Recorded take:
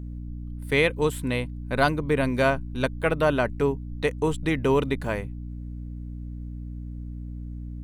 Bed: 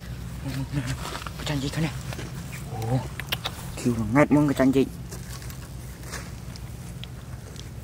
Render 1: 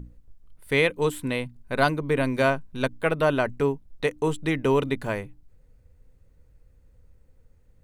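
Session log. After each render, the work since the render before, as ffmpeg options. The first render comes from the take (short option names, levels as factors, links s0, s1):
-af "bandreject=f=60:t=h:w=6,bandreject=f=120:t=h:w=6,bandreject=f=180:t=h:w=6,bandreject=f=240:t=h:w=6,bandreject=f=300:t=h:w=6"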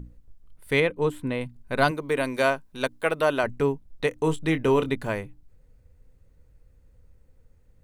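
-filter_complex "[0:a]asettb=1/sr,asplit=3[s0][s1][s2];[s0]atrim=end=0.804[s3];[s1]atrim=start=0.8:end=1.41,asetpts=PTS-STARTPTS,afade=t=in:d=0.004:c=qsin,afade=t=out:st=0.606:d=0.004:c=qsin,highshelf=f=2700:g=-11.5[s4];[s2]atrim=start=1.406[s5];[s3][s4]acrossfade=d=0.004:c1=hsin:c2=qsin[s6];[s6][s5]acrossfade=d=0.004:c1=qsin:c2=hsin,asettb=1/sr,asplit=3[s7][s8][s9];[s7]atrim=end=1.914[s10];[s8]atrim=start=1.91:end=3.44,asetpts=PTS-STARTPTS,afade=t=in:d=0.004:c=qsin,afade=t=out:st=1.526:d=0.004:c=qsin,bass=f=250:g=-10,treble=f=4000:g=4[s11];[s9]atrim=start=3.436[s12];[s10][s11]acrossfade=d=0.004:c1=hsin:c2=qsin[s13];[s13][s12]acrossfade=d=0.004:c1=qsin:c2=hsin,asettb=1/sr,asplit=3[s14][s15][s16];[s14]atrim=end=4.094[s17];[s15]atrim=start=4.09:end=4.87,asetpts=PTS-STARTPTS,afade=t=in:d=0.004:c=qsin,afade=t=out:st=0.776:d=0.004:c=qsin,asplit=2[s18][s19];[s19]adelay=25,volume=0.282[s20];[s18][s20]amix=inputs=2:normalize=0,atrim=end_sample=34398[s21];[s16]atrim=start=4.866[s22];[s17][s21]acrossfade=d=0.004:c1=hsin:c2=qsin[s23];[s23][s22]acrossfade=d=0.004:c1=qsin:c2=hsin"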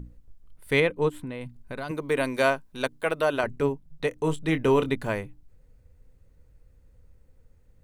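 -filter_complex "[0:a]asplit=3[s0][s1][s2];[s0]afade=t=out:st=1.08:d=0.02[s3];[s1]acompressor=threshold=0.0282:ratio=6:attack=3.2:release=140:knee=1:detection=peak,afade=t=in:st=1.08:d=0.02,afade=t=out:st=1.89:d=0.02[s4];[s2]afade=t=in:st=1.89:d=0.02[s5];[s3][s4][s5]amix=inputs=3:normalize=0,asplit=3[s6][s7][s8];[s6]afade=t=out:st=2.81:d=0.02[s9];[s7]tremolo=f=150:d=0.4,afade=t=in:st=2.81:d=0.02,afade=t=out:st=4.51:d=0.02[s10];[s8]afade=t=in:st=4.51:d=0.02[s11];[s9][s10][s11]amix=inputs=3:normalize=0"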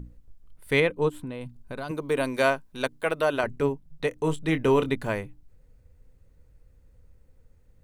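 -filter_complex "[0:a]asettb=1/sr,asplit=3[s0][s1][s2];[s0]atrim=end=0.924[s3];[s1]atrim=start=0.92:end=2.34,asetpts=PTS-STARTPTS,afade=t=in:d=0.004:c=qsin,afade=t=out:st=1.416:d=0.004:c=qsin,equalizer=f=2000:t=o:w=0.5:g=-5.5[s4];[s2]atrim=start=2.336[s5];[s3][s4]acrossfade=d=0.004:c1=hsin:c2=qsin[s6];[s6][s5]acrossfade=d=0.004:c1=qsin:c2=hsin"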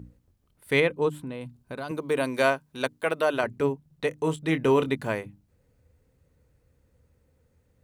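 -af "highpass=79,bandreject=f=50:t=h:w=6,bandreject=f=100:t=h:w=6,bandreject=f=150:t=h:w=6,bandreject=f=200:t=h:w=6"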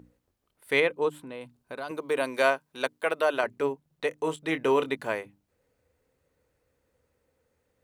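-af "bass=f=250:g=-14,treble=f=4000:g=-2"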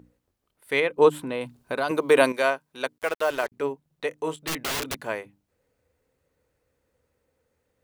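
-filter_complex "[0:a]asettb=1/sr,asplit=3[s0][s1][s2];[s0]atrim=end=2.984[s3];[s1]atrim=start=2.98:end=3.52,asetpts=PTS-STARTPTS,afade=t=in:d=0.004:c=qsin,afade=t=out:st=0.536:d=0.004:c=qsin,acrusher=bits=5:mix=0:aa=0.5[s4];[s2]atrim=start=3.516[s5];[s3][s4]acrossfade=d=0.004:c1=hsin:c2=qsin[s6];[s6][s5]acrossfade=d=0.004:c1=qsin:c2=hsin,asettb=1/sr,asplit=3[s7][s8][s9];[s7]atrim=end=4.474[s10];[s8]atrim=start=4.47:end=4.97,asetpts=PTS-STARTPTS,afade=t=in:d=0.004:c=qsin,afade=t=out:st=0.496:d=0.004:c=qsin,aeval=exprs='(mod(15*val(0)+1,2)-1)/15':c=same[s11];[s9]atrim=start=4.966[s12];[s10][s11]acrossfade=d=0.004:c1=hsin:c2=qsin[s13];[s13][s12]acrossfade=d=0.004:c1=qsin:c2=hsin,asplit=3[s14][s15][s16];[s14]atrim=end=0.982[s17];[s15]atrim=start=0.978:end=2.322,asetpts=PTS-STARTPTS,volume=3.16[s18];[s16]atrim=start=2.318[s19];[s17][s18]acrossfade=d=0.004:c1=hsin:c2=hsin[s20];[s20][s19]acrossfade=d=0.004:c1=hsin:c2=hsin"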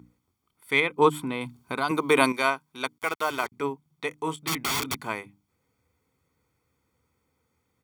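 -af "highpass=82,aecho=1:1:0.9:0.68"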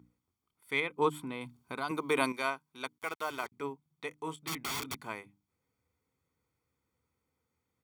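-af "volume=0.355"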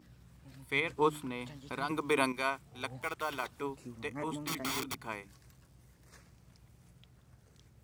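-filter_complex "[1:a]volume=0.0708[s0];[0:a][s0]amix=inputs=2:normalize=0"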